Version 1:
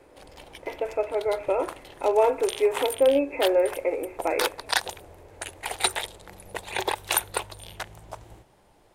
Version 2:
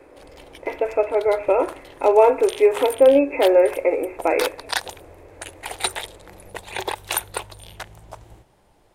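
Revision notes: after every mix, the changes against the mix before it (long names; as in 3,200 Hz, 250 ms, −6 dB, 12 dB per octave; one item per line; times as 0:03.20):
speech +6.5 dB
master: add low-shelf EQ 120 Hz +3.5 dB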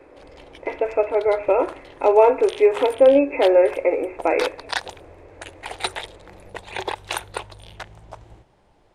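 background: add high-frequency loss of the air 67 metres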